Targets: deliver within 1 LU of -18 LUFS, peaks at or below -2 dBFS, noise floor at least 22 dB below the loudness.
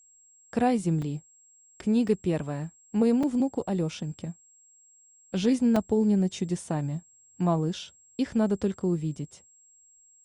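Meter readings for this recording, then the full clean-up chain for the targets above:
dropouts 4; longest dropout 4.3 ms; steady tone 7.6 kHz; tone level -56 dBFS; loudness -27.5 LUFS; peak level -12.5 dBFS; loudness target -18.0 LUFS
-> interpolate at 1.02/2.08/3.23/5.76 s, 4.3 ms; band-stop 7.6 kHz, Q 30; trim +9.5 dB

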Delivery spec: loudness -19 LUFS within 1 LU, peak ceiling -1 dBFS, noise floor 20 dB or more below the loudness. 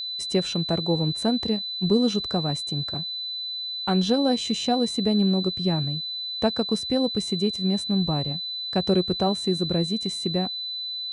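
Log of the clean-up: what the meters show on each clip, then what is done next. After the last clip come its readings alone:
steady tone 4 kHz; tone level -29 dBFS; loudness -24.5 LUFS; peak level -9.5 dBFS; loudness target -19.0 LUFS
-> band-stop 4 kHz, Q 30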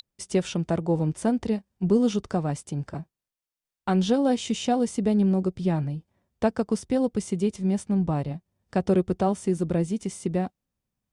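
steady tone not found; loudness -26.0 LUFS; peak level -10.0 dBFS; loudness target -19.0 LUFS
-> trim +7 dB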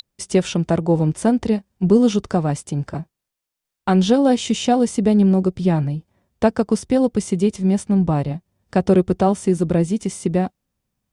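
loudness -19.0 LUFS; peak level -3.0 dBFS; noise floor -83 dBFS

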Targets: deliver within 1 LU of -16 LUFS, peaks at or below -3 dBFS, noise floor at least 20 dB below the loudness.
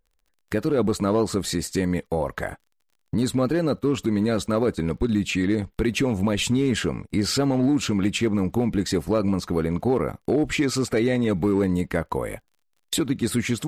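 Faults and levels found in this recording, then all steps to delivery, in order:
tick rate 35 per s; loudness -24.0 LUFS; peak level -12.5 dBFS; loudness target -16.0 LUFS
-> de-click; trim +8 dB

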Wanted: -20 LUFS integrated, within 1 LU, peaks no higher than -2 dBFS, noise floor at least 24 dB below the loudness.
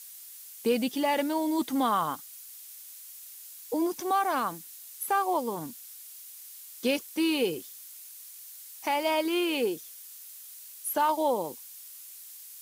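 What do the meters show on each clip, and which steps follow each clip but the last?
noise floor -47 dBFS; noise floor target -53 dBFS; loudness -29.0 LUFS; peak level -15.0 dBFS; loudness target -20.0 LUFS
-> noise reduction 6 dB, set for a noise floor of -47 dBFS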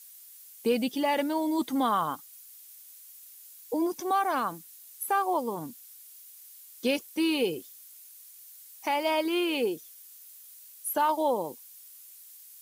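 noise floor -51 dBFS; noise floor target -53 dBFS
-> noise reduction 6 dB, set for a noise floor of -51 dBFS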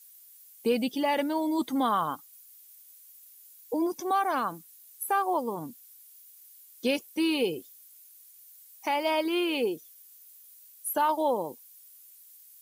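noise floor -54 dBFS; loudness -29.0 LUFS; peak level -15.5 dBFS; loudness target -20.0 LUFS
-> trim +9 dB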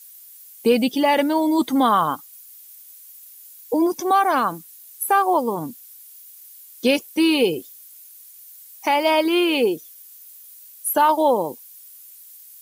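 loudness -20.0 LUFS; peak level -6.5 dBFS; noise floor -45 dBFS

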